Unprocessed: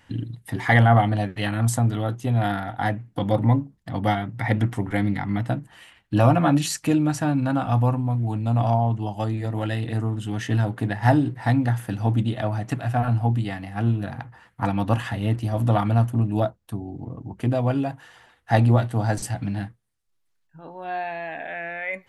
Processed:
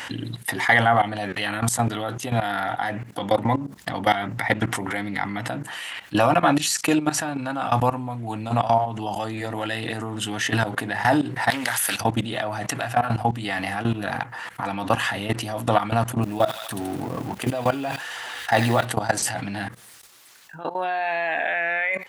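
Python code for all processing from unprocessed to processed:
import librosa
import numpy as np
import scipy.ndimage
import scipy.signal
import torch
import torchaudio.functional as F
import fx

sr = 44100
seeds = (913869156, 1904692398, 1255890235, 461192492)

y = fx.chain(x, sr, fx.tilt_eq(slope=4.5),
    fx.doppler_dist(depth_ms=0.29), at=(11.5, 12.01))
y = fx.chain(y, sr, fx.law_mismatch(coded='mu'),
    fx.echo_wet_highpass(ms=81, feedback_pct=49, hz=2300.0, wet_db=-6.0), at=(16.23, 18.85))
y = fx.level_steps(y, sr, step_db=20)
y = fx.highpass(y, sr, hz=850.0, slope=6)
y = fx.env_flatten(y, sr, amount_pct=50)
y = y * 10.0 ** (8.0 / 20.0)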